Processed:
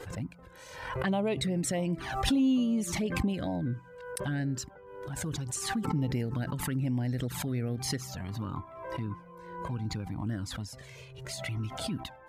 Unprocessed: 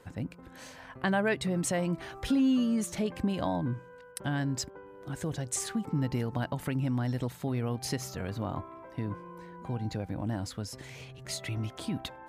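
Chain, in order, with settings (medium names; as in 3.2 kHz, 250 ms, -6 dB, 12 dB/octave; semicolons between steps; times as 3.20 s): touch-sensitive flanger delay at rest 2.6 ms, full sweep at -24.5 dBFS; swell ahead of each attack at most 54 dB/s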